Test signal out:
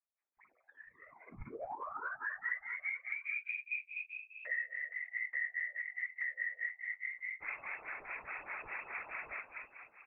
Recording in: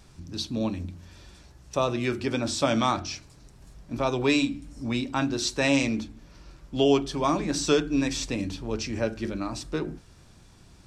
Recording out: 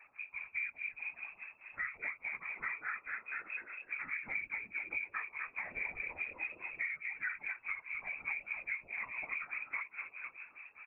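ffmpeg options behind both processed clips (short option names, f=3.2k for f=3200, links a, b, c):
-filter_complex "[0:a]aemphasis=mode=production:type=bsi,bandreject=f=1k:w=6.6,aecho=1:1:4.6:0.65,asplit=7[a][b][c][d][e][f][g];[b]adelay=251,afreqshift=-46,volume=-9dB[h];[c]adelay=502,afreqshift=-92,volume=-14.2dB[i];[d]adelay=753,afreqshift=-138,volume=-19.4dB[j];[e]adelay=1004,afreqshift=-184,volume=-24.6dB[k];[f]adelay=1255,afreqshift=-230,volume=-29.8dB[l];[g]adelay=1506,afreqshift=-276,volume=-35dB[m];[a][h][i][j][k][l][m]amix=inputs=7:normalize=0,asplit=2[n][o];[o]alimiter=limit=-15.5dB:level=0:latency=1,volume=0dB[p];[n][p]amix=inputs=2:normalize=0,asoftclip=type=tanh:threshold=-8dB,acrossover=split=2000[q][r];[q]aeval=exprs='val(0)*(1-1/2+1/2*cos(2*PI*4.8*n/s))':c=same[s];[r]aeval=exprs='val(0)*(1-1/2-1/2*cos(2*PI*4.8*n/s))':c=same[t];[s][t]amix=inputs=2:normalize=0,lowpass=f=2.2k:t=q:w=0.5098,lowpass=f=2.2k:t=q:w=0.6013,lowpass=f=2.2k:t=q:w=0.9,lowpass=f=2.2k:t=q:w=2.563,afreqshift=-2600,flanger=delay=8.9:depth=1.2:regen=-33:speed=0.44:shape=triangular,acompressor=threshold=-38dB:ratio=12,equalizer=f=130:w=0.32:g=-12.5,afftfilt=real='hypot(re,im)*cos(2*PI*random(0))':imag='hypot(re,im)*sin(2*PI*random(1))':win_size=512:overlap=0.75,volume=8dB"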